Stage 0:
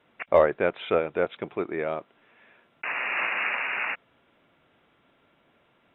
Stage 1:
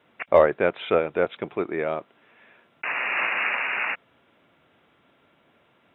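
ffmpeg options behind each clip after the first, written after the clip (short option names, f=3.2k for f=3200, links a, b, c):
-af "highpass=56,volume=2.5dB"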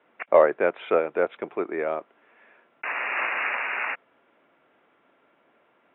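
-filter_complex "[0:a]acrossover=split=240 2800:gain=0.158 1 0.0708[a][b][c];[a][b][c]amix=inputs=3:normalize=0"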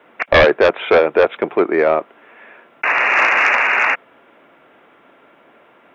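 -af "aeval=exprs='0.562*sin(PI/2*3.16*val(0)/0.562)':c=same"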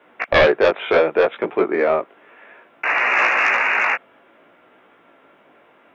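-af "flanger=delay=16:depth=3.7:speed=0.63"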